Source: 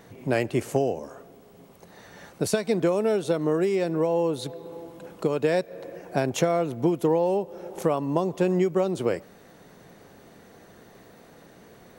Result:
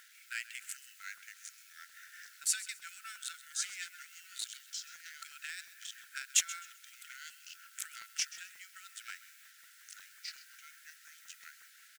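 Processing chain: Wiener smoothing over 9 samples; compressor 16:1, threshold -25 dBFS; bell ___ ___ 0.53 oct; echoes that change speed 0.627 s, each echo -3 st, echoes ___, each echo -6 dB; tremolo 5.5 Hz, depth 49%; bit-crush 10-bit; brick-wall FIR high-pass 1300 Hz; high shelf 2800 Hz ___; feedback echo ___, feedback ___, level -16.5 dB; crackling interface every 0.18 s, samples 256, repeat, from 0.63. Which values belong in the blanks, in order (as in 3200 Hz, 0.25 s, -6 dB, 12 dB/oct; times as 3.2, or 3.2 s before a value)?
7800 Hz, +9 dB, 2, +5 dB, 0.13 s, 26%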